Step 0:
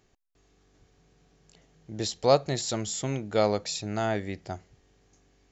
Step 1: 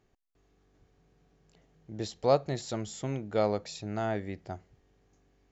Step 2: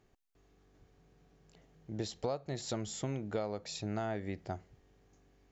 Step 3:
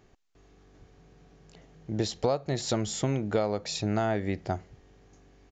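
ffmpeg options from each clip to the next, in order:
-af "highshelf=f=3000:g=-9.5,volume=0.708"
-af "acompressor=threshold=0.0224:ratio=12,volume=1.12"
-af "aresample=16000,aresample=44100,volume=2.82"

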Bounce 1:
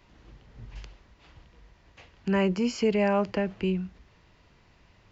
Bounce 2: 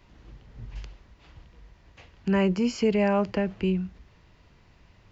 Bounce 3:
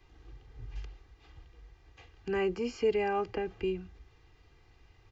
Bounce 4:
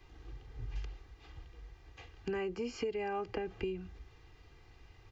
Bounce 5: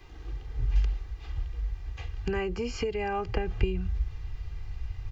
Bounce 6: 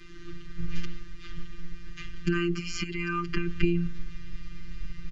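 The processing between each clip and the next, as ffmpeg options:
-af "lowshelf=f=200:g=4.5"
-filter_complex "[0:a]aecho=1:1:2.5:0.73,acrossover=split=230|2800[s0][s1][s2];[s2]alimiter=level_in=3.98:limit=0.0631:level=0:latency=1:release=127,volume=0.251[s3];[s0][s1][s3]amix=inputs=3:normalize=0,volume=0.473"
-af "acompressor=threshold=0.0158:ratio=8,volume=1.33"
-af "asubboost=boost=9:cutoff=100,volume=2.37"
-af "afftfilt=real='hypot(re,im)*cos(PI*b)':imag='0':win_size=1024:overlap=0.75,aresample=22050,aresample=44100,asuperstop=centerf=660:order=12:qfactor=0.91,volume=2.66"

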